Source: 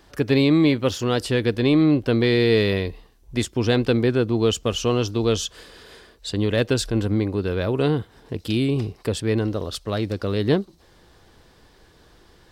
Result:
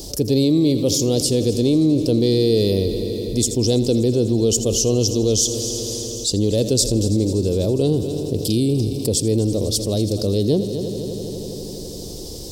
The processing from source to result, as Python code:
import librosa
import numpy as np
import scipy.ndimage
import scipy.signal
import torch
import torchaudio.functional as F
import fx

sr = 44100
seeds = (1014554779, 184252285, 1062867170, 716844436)

p1 = fx.curve_eq(x, sr, hz=(550.0, 1600.0, 5300.0), db=(0, -29, 10))
p2 = p1 + fx.echo_heads(p1, sr, ms=82, heads='first and third', feedback_pct=73, wet_db=-17.5, dry=0)
y = fx.env_flatten(p2, sr, amount_pct=50)